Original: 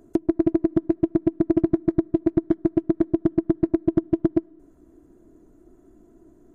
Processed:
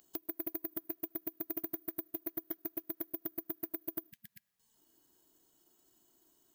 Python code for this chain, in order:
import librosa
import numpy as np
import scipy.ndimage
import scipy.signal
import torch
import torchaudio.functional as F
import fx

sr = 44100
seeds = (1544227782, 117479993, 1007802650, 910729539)

y = np.diff(x, prepend=0.0)
y = fx.spec_erase(y, sr, start_s=4.11, length_s=0.65, low_hz=230.0, high_hz=1600.0)
y = (np.kron(y[::3], np.eye(3)[0]) * 3)[:len(y)]
y = y * 10.0 ** (2.0 / 20.0)